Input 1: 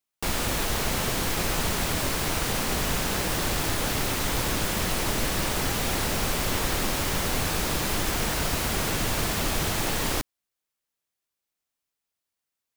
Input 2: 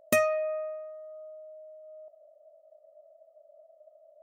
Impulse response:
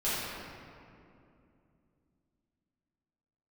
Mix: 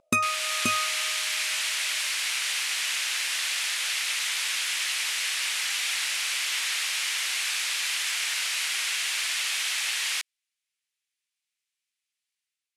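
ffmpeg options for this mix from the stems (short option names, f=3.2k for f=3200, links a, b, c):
-filter_complex "[0:a]highpass=f=2.3k:t=q:w=1.6,volume=-3dB[a];[1:a]aecho=1:1:0.8:0.89,volume=0.5dB,asplit=2[b][c];[c]volume=-7.5dB,aecho=0:1:530:1[d];[a][b][d]amix=inputs=3:normalize=0,lowpass=f=11k:w=0.5412,lowpass=f=11k:w=1.3066,dynaudnorm=f=100:g=7:m=4.5dB"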